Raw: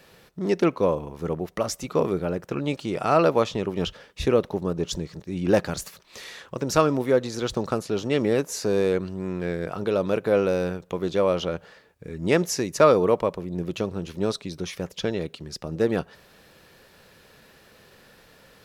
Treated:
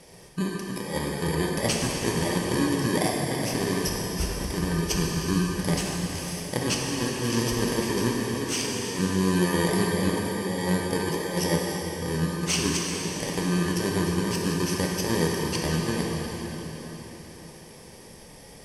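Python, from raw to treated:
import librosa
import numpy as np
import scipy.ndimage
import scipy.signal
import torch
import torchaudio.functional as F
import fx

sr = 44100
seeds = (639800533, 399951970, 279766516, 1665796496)

y = fx.bit_reversed(x, sr, seeds[0], block=32)
y = scipy.signal.sosfilt(scipy.signal.butter(4, 10000.0, 'lowpass', fs=sr, output='sos'), y)
y = fx.over_compress(y, sr, threshold_db=-29.0, ratio=-0.5)
y = fx.rev_plate(y, sr, seeds[1], rt60_s=4.5, hf_ratio=0.9, predelay_ms=0, drr_db=-2.5)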